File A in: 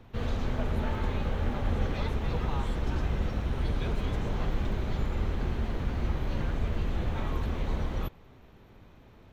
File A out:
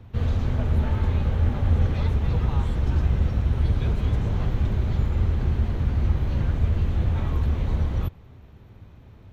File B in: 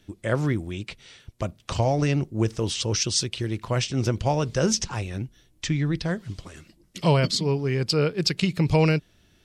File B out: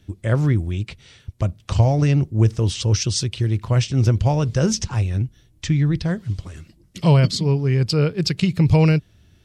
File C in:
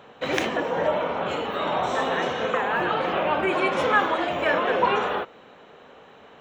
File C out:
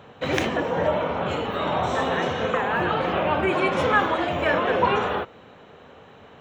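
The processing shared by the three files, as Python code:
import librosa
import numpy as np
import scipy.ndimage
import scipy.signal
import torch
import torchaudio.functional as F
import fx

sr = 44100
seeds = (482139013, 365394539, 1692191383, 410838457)

y = fx.peak_eq(x, sr, hz=89.0, db=12.0, octaves=1.8)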